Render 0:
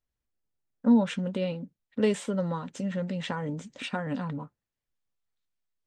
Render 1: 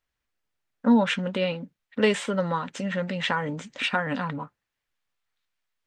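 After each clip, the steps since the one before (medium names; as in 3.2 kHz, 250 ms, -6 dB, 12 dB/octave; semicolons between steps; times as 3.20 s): peaking EQ 1.9 kHz +11.5 dB 3 oct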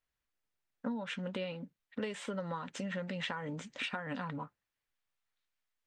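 compression 16:1, threshold -28 dBFS, peak gain reduction 14.5 dB; trim -6 dB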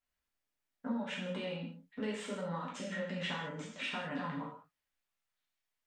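gated-style reverb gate 230 ms falling, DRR -5 dB; trim -6 dB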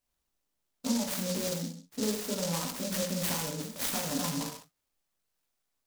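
delay time shaken by noise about 5.4 kHz, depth 0.18 ms; trim +6.5 dB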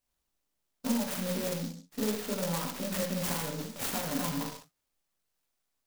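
tracing distortion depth 0.37 ms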